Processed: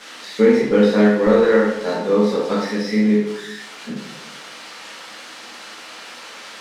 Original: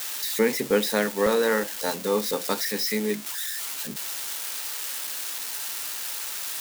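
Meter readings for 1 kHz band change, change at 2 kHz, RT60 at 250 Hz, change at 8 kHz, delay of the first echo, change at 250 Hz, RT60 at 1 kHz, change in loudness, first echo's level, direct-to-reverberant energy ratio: +5.0 dB, +4.0 dB, 1.1 s, -10.5 dB, no echo, +13.0 dB, 0.80 s, +9.5 dB, no echo, -7.5 dB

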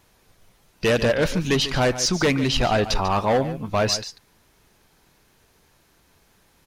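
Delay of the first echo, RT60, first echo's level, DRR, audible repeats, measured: 144 ms, no reverb, -13.0 dB, no reverb, 1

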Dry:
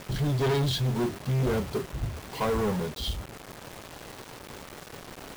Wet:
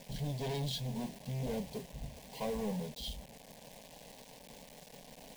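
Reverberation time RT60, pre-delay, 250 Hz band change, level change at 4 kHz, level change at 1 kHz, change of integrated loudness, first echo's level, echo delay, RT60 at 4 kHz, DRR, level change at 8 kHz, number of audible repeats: no reverb, no reverb, -9.5 dB, -8.5 dB, -12.0 dB, -10.5 dB, no echo, no echo, no reverb, no reverb, -7.5 dB, no echo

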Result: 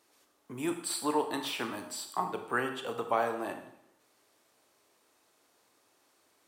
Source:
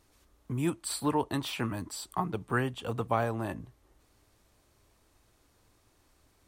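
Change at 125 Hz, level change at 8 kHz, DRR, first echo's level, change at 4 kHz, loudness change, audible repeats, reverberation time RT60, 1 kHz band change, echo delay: -15.0 dB, +1.0 dB, 6.0 dB, no echo, +1.0 dB, -1.0 dB, no echo, 0.75 s, +0.5 dB, no echo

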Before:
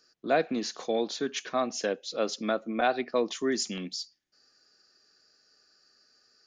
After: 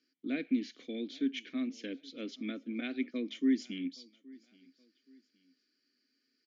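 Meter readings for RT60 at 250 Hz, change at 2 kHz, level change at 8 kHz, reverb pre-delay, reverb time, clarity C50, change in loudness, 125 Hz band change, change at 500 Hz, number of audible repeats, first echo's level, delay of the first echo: no reverb, -9.5 dB, under -15 dB, no reverb, no reverb, no reverb, -6.0 dB, no reading, -15.5 dB, 2, -24.0 dB, 822 ms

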